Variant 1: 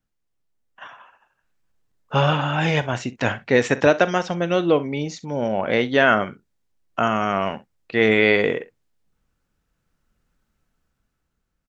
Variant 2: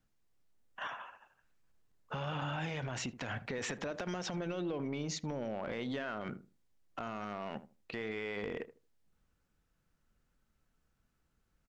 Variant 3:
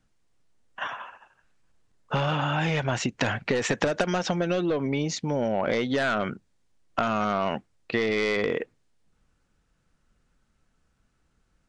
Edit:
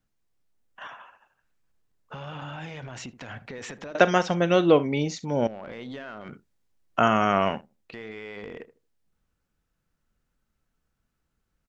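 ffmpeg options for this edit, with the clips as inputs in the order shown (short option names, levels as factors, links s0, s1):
-filter_complex "[0:a]asplit=2[s0][s1];[1:a]asplit=3[s2][s3][s4];[s2]atrim=end=3.952[s5];[s0]atrim=start=3.948:end=5.472[s6];[s3]atrim=start=5.468:end=6.332[s7];[s1]atrim=start=6.328:end=7.612[s8];[s4]atrim=start=7.608[s9];[s5][s6]acrossfade=d=0.004:c1=hsin:c2=hsin[s10];[s10][s7]acrossfade=d=0.004:c1=hsin:c2=hsin[s11];[s11][s8]acrossfade=d=0.004:c1=hsin:c2=hsin[s12];[s12][s9]acrossfade=d=0.004:c1=hsin:c2=hsin"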